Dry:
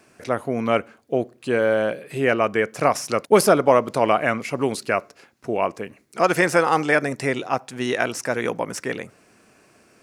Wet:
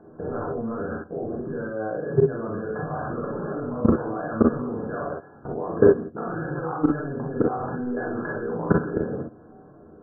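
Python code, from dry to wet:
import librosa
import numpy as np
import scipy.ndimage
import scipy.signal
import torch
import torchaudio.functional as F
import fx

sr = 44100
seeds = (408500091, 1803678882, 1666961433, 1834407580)

y = fx.env_lowpass(x, sr, base_hz=740.0, full_db=-14.5)
y = fx.over_compress(y, sr, threshold_db=-30.0, ratio=-1.0)
y = fx.brickwall_lowpass(y, sr, high_hz=1700.0)
y = fx.room_shoebox(y, sr, seeds[0], volume_m3=45.0, walls='mixed', distance_m=0.76)
y = fx.level_steps(y, sr, step_db=19)
y = fx.room_early_taps(y, sr, ms=(37, 49, 62), db=(-4.5, -4.5, -7.0))
y = y * 10.0 ** (6.0 / 20.0)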